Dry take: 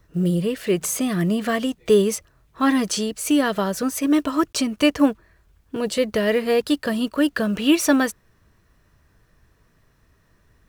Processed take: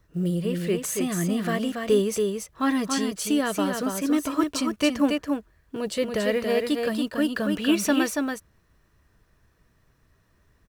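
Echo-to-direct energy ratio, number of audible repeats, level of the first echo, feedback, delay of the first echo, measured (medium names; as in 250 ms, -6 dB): -4.5 dB, 1, -4.5 dB, no regular repeats, 281 ms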